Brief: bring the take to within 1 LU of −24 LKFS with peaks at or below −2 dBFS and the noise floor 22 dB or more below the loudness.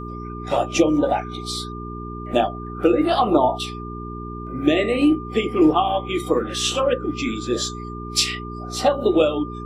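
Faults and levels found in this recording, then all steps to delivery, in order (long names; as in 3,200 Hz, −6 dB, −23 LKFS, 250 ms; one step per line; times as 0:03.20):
mains hum 60 Hz; hum harmonics up to 420 Hz; level of the hum −31 dBFS; interfering tone 1,200 Hz; level of the tone −35 dBFS; integrated loudness −21.0 LKFS; sample peak −3.0 dBFS; target loudness −24.0 LKFS
→ hum removal 60 Hz, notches 7
notch filter 1,200 Hz, Q 30
level −3 dB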